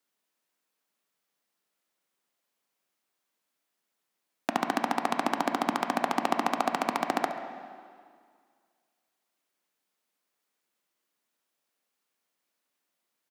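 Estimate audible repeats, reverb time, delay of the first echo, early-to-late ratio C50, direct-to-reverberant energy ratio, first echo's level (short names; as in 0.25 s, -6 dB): 1, 2.0 s, 68 ms, 7.0 dB, 5.5 dB, -15.0 dB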